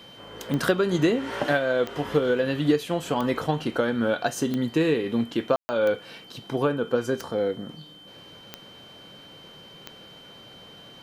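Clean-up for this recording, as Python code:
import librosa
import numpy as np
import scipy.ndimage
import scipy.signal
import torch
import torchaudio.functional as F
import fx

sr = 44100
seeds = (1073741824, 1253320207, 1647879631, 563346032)

y = fx.fix_declick_ar(x, sr, threshold=10.0)
y = fx.notch(y, sr, hz=3100.0, q=30.0)
y = fx.fix_ambience(y, sr, seeds[0], print_start_s=7.85, print_end_s=8.35, start_s=5.56, end_s=5.69)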